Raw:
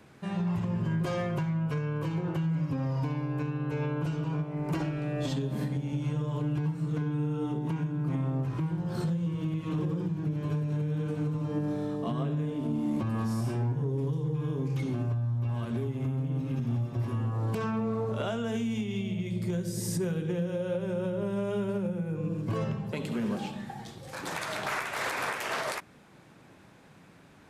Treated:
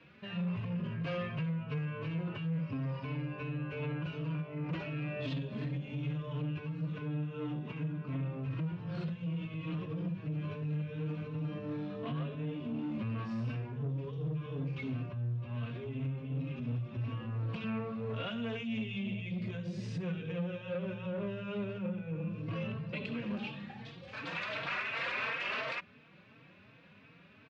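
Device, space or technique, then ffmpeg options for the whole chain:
barber-pole flanger into a guitar amplifier: -filter_complex "[0:a]asplit=2[link_01][link_02];[link_02]adelay=3.9,afreqshift=2.8[link_03];[link_01][link_03]amix=inputs=2:normalize=1,asoftclip=type=tanh:threshold=-29.5dB,highpass=81,equalizer=frequency=350:width_type=q:width=4:gain=-7,equalizer=frequency=810:width_type=q:width=4:gain=-9,equalizer=frequency=2600:width_type=q:width=4:gain=10,lowpass=frequency=4200:width=0.5412,lowpass=frequency=4200:width=1.3066"

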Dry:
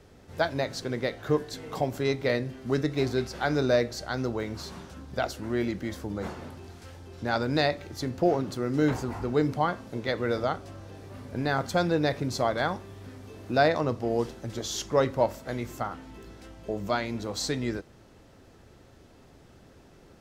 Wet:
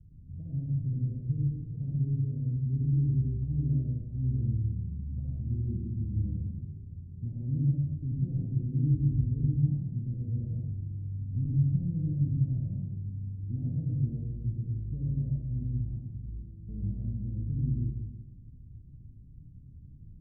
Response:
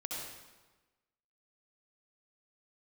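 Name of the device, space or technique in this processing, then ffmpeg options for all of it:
club heard from the street: -filter_complex "[0:a]alimiter=limit=-19dB:level=0:latency=1:release=134,lowpass=frequency=160:width=0.5412,lowpass=frequency=160:width=1.3066[link_01];[1:a]atrim=start_sample=2205[link_02];[link_01][link_02]afir=irnorm=-1:irlink=0,volume=8.5dB"

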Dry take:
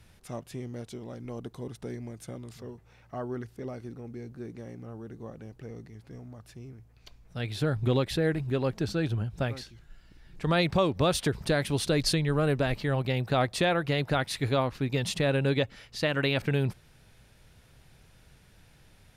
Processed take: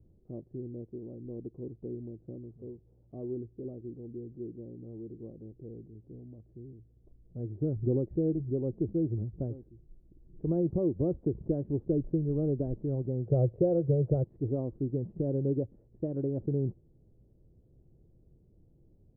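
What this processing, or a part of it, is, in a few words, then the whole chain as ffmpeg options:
under water: -filter_complex "[0:a]asettb=1/sr,asplit=3[link_01][link_02][link_03];[link_01]atrim=end=13.264[link_04];[link_02]atrim=start=13.26:end=14.24,asetpts=PTS-STARTPTS,afade=type=in:duration=0.004:curve=qsin,afade=type=out:start_time=0.976:duration=0.004:curve=qsin,equalizer=frequency=125:width_type=o:width=1:gain=11,equalizer=frequency=250:width_type=o:width=1:gain=-10,equalizer=frequency=500:width_type=o:width=1:gain=11,equalizer=frequency=1000:width_type=o:width=1:gain=-4[link_05];[link_03]atrim=start=14.236[link_06];[link_04][link_05]acrossfade=duration=0.004:curve1=hsin:curve2=qsin[link_07];[link_07][link_06]acrossfade=duration=0.004:curve1=qsin:curve2=hsin,lowpass=frequency=490:width=0.5412,lowpass=frequency=490:width=1.3066,equalizer=frequency=340:width_type=o:width=0.34:gain=7.5,volume=-3.5dB"

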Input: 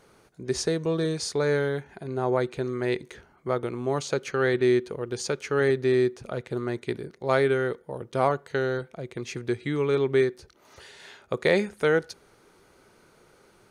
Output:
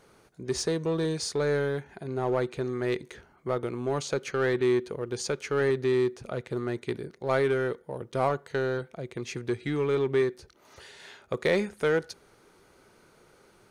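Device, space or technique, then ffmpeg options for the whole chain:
parallel distortion: -filter_complex "[0:a]asplit=2[link_01][link_02];[link_02]asoftclip=type=hard:threshold=-25dB,volume=-4.5dB[link_03];[link_01][link_03]amix=inputs=2:normalize=0,volume=-5dB"

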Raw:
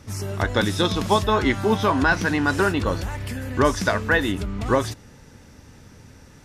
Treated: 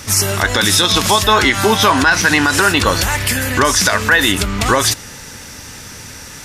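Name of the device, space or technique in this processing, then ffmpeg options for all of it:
mastering chain: -af "equalizer=frequency=3400:width_type=o:width=2.1:gain=-3,acompressor=threshold=-22dB:ratio=2.5,tiltshelf=frequency=1100:gain=-9,asoftclip=type=hard:threshold=-10.5dB,alimiter=level_in=18dB:limit=-1dB:release=50:level=0:latency=1,volume=-1dB"

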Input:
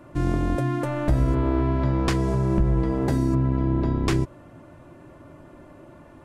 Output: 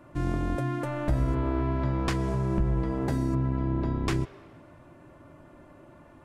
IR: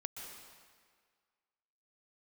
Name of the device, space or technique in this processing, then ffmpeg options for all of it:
filtered reverb send: -filter_complex "[0:a]asplit=2[link_01][link_02];[link_02]highpass=frequency=380:width=0.5412,highpass=frequency=380:width=1.3066,lowpass=3600[link_03];[1:a]atrim=start_sample=2205[link_04];[link_03][link_04]afir=irnorm=-1:irlink=0,volume=-10.5dB[link_05];[link_01][link_05]amix=inputs=2:normalize=0,volume=-5dB"

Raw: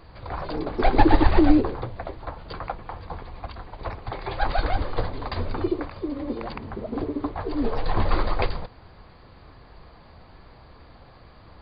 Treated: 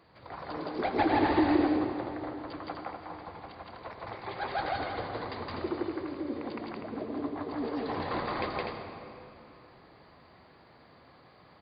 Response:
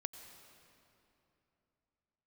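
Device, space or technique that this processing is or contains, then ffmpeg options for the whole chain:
stadium PA: -filter_complex "[0:a]highpass=150,equalizer=frequency=2000:width_type=o:width=0.2:gain=3.5,aecho=1:1:166.2|247.8:1|0.562[link_01];[1:a]atrim=start_sample=2205[link_02];[link_01][link_02]afir=irnorm=-1:irlink=0,volume=-6.5dB"

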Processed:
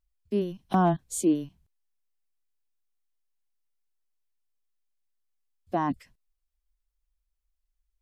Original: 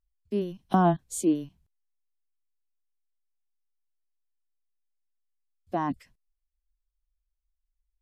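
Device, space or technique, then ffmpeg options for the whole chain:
clipper into limiter: -af "asoftclip=type=hard:threshold=-13.5dB,alimiter=limit=-16.5dB:level=0:latency=1,volume=1.5dB"

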